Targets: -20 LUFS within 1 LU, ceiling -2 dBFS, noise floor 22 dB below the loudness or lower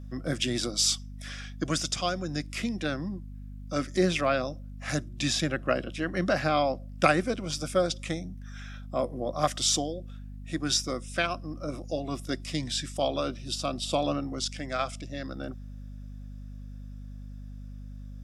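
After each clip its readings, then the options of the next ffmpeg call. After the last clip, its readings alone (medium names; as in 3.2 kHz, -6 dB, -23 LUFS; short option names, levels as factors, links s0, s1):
hum 50 Hz; highest harmonic 250 Hz; hum level -39 dBFS; loudness -29.5 LUFS; peak level -6.0 dBFS; loudness target -20.0 LUFS
-> -af "bandreject=f=50:t=h:w=4,bandreject=f=100:t=h:w=4,bandreject=f=150:t=h:w=4,bandreject=f=200:t=h:w=4,bandreject=f=250:t=h:w=4"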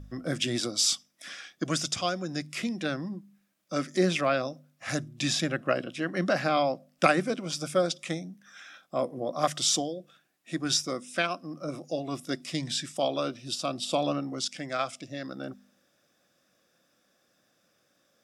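hum not found; loudness -29.5 LUFS; peak level -6.5 dBFS; loudness target -20.0 LUFS
-> -af "volume=2.99,alimiter=limit=0.794:level=0:latency=1"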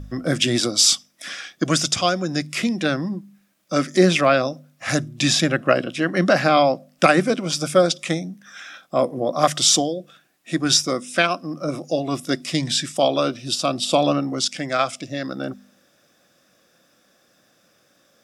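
loudness -20.5 LUFS; peak level -2.0 dBFS; noise floor -61 dBFS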